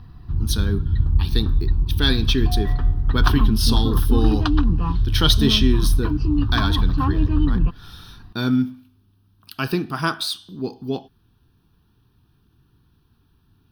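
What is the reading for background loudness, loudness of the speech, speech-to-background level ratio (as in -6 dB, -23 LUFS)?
-21.5 LUFS, -24.0 LUFS, -2.5 dB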